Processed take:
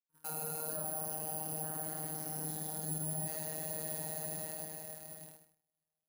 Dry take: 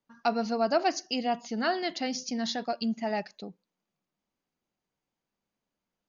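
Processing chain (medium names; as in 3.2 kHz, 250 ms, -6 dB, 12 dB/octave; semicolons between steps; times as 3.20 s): chunks repeated in reverse 169 ms, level -6 dB; plate-style reverb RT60 4.3 s, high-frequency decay 0.95×, DRR -7 dB; bit crusher 11-bit; 0.76–3.28 s: FFT filter 190 Hz 0 dB, 300 Hz -24 dB, 430 Hz -14 dB, 950 Hz -12 dB, 2.2 kHz -22 dB; robot voice 156 Hz; companded quantiser 6-bit; careless resampling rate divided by 4×, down none, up zero stuff; peaking EQ 67 Hz +13.5 dB 1.6 oct; gate -47 dBFS, range -31 dB; flange 0.55 Hz, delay 5.9 ms, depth 3.7 ms, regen -80%; peak limiter -21.5 dBFS, peak gain reduction 20.5 dB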